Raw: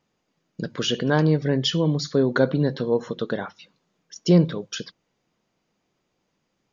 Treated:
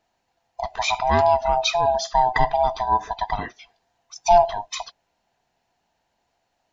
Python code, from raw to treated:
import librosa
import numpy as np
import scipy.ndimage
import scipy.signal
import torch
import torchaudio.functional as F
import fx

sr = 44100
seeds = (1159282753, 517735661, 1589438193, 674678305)

y = fx.band_swap(x, sr, width_hz=500)
y = y * librosa.db_to_amplitude(1.5)